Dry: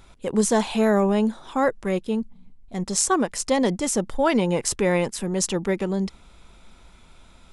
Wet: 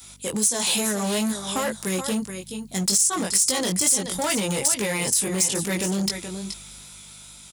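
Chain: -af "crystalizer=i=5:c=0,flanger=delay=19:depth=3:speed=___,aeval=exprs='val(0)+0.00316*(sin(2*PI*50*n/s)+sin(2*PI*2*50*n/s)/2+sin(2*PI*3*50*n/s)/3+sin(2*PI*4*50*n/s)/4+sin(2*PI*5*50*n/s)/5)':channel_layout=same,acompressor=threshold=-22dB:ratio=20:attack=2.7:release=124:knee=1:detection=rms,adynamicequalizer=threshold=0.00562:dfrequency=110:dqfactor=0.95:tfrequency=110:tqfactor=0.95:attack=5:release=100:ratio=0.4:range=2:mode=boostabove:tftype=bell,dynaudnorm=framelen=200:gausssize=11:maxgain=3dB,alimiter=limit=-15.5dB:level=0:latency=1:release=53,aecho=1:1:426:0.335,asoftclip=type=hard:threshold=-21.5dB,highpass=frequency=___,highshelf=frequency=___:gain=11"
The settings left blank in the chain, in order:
2.3, 66, 3800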